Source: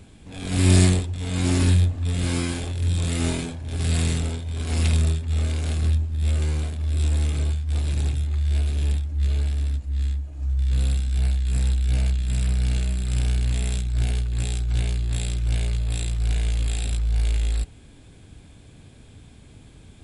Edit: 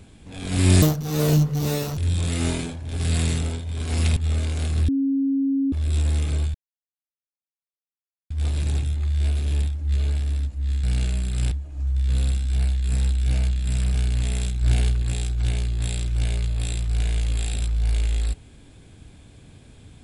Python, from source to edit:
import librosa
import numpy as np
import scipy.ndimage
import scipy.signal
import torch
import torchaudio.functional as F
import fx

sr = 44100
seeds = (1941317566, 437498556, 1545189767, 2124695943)

y = fx.edit(x, sr, fx.speed_span(start_s=0.82, length_s=1.95, speed=1.69),
    fx.cut(start_s=4.96, length_s=0.27),
    fx.bleep(start_s=5.95, length_s=0.84, hz=273.0, db=-18.5),
    fx.insert_silence(at_s=7.61, length_s=1.76),
    fx.move(start_s=12.57, length_s=0.68, to_s=10.14),
    fx.clip_gain(start_s=13.92, length_s=0.41, db=3.5), tone=tone)